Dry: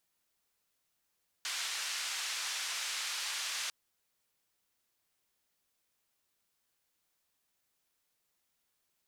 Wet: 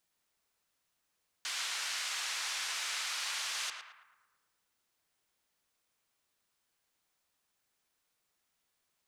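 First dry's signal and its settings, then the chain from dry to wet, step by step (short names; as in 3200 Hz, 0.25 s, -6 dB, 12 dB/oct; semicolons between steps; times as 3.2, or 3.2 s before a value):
noise band 1300–6200 Hz, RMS -37.5 dBFS 2.25 s
bell 16000 Hz -7 dB 0.48 oct; on a send: narrowing echo 0.111 s, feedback 54%, band-pass 1200 Hz, level -3.5 dB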